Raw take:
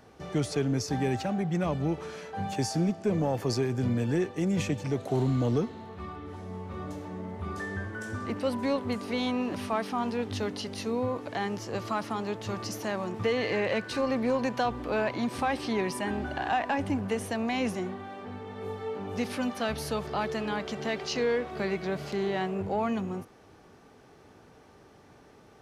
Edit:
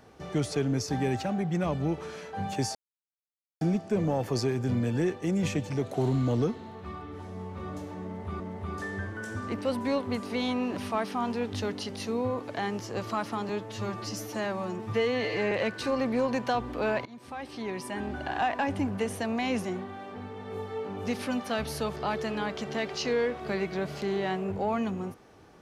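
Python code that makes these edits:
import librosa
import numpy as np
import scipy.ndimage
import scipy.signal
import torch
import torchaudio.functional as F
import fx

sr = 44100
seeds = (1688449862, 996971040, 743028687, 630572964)

y = fx.edit(x, sr, fx.insert_silence(at_s=2.75, length_s=0.86),
    fx.repeat(start_s=7.18, length_s=0.36, count=2),
    fx.stretch_span(start_s=12.27, length_s=1.35, factor=1.5),
    fx.fade_in_from(start_s=15.16, length_s=1.37, floor_db=-21.0), tone=tone)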